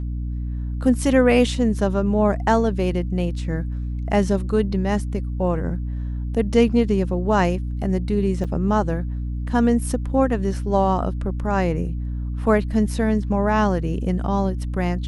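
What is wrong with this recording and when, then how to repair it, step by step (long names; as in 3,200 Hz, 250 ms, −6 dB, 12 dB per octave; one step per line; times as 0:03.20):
mains hum 60 Hz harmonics 5 −26 dBFS
0:08.44–0:08.45: drop-out 6.5 ms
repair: hum removal 60 Hz, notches 5
repair the gap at 0:08.44, 6.5 ms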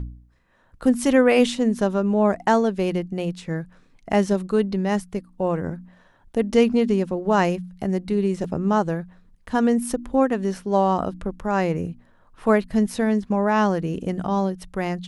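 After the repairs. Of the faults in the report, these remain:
none of them is left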